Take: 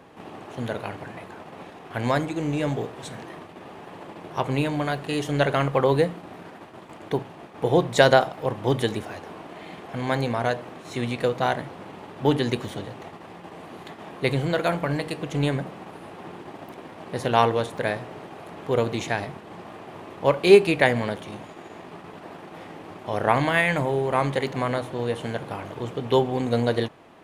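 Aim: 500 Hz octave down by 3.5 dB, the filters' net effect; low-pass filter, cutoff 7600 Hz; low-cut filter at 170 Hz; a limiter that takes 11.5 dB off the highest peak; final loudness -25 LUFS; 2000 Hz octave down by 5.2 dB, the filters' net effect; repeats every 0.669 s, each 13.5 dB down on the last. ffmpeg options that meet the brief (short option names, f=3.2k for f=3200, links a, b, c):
-af "highpass=170,lowpass=7.6k,equalizer=f=500:t=o:g=-4,equalizer=f=2k:t=o:g=-6.5,alimiter=limit=-16dB:level=0:latency=1,aecho=1:1:669|1338:0.211|0.0444,volume=6dB"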